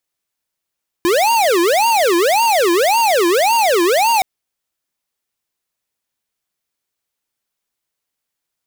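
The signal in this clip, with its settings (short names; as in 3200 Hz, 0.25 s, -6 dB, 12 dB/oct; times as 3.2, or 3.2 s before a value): siren wail 338–934 Hz 1.8/s square -13.5 dBFS 3.17 s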